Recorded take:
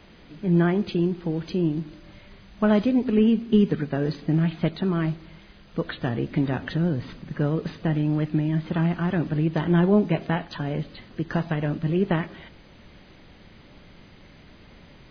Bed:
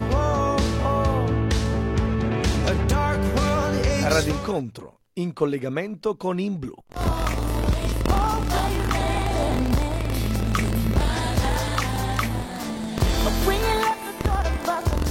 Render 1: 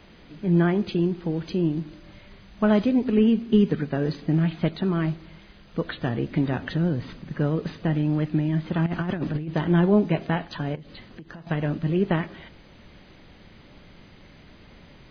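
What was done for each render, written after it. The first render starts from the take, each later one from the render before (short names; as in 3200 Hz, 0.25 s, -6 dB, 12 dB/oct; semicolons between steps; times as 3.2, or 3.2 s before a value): 8.86–9.49 negative-ratio compressor -26 dBFS, ratio -0.5; 10.75–11.47 compressor 12:1, threshold -37 dBFS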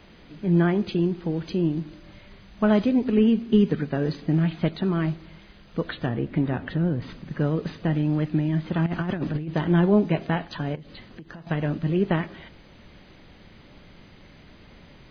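6.06–7.02 air absorption 230 m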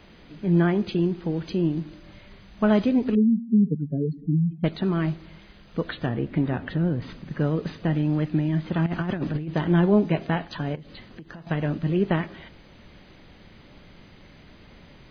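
3.15–4.64 spectral contrast raised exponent 3.4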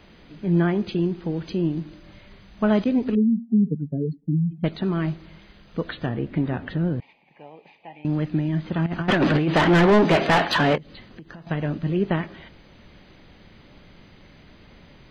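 2.84–4.42 expander -31 dBFS; 7–8.05 double band-pass 1400 Hz, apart 1.5 oct; 9.08–10.78 overdrive pedal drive 28 dB, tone 3400 Hz, clips at -8.5 dBFS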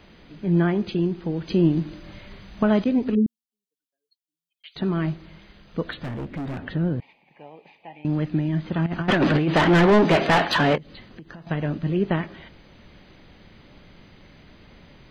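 1.5–2.63 gain +5 dB; 3.26–4.76 Chebyshev high-pass 3000 Hz, order 3; 5.92–6.59 hard clip -27.5 dBFS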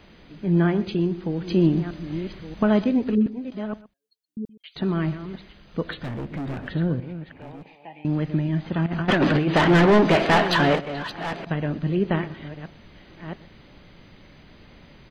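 reverse delay 0.636 s, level -11.5 dB; echo 0.123 s -18.5 dB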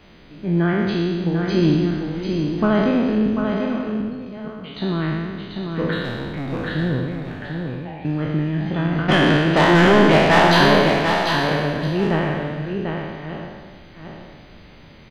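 spectral trails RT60 1.70 s; echo 0.743 s -5.5 dB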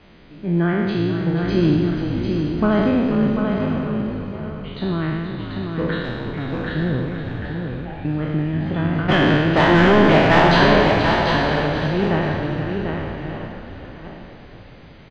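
air absorption 98 m; frequency-shifting echo 0.481 s, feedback 48%, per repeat -57 Hz, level -9 dB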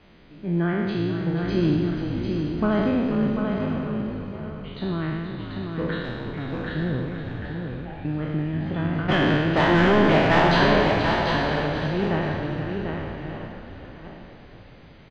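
gain -4.5 dB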